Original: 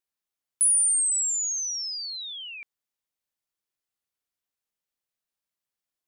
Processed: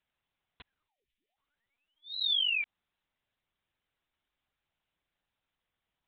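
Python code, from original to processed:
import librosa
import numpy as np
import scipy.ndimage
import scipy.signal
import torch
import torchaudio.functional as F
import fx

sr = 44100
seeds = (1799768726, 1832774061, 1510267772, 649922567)

y = fx.steep_highpass(x, sr, hz=1900.0, slope=36, at=(0.87, 1.36), fade=0.02)
y = fx.lpc_vocoder(y, sr, seeds[0], excitation='pitch_kept', order=10)
y = y * librosa.db_to_amplitude(9.0)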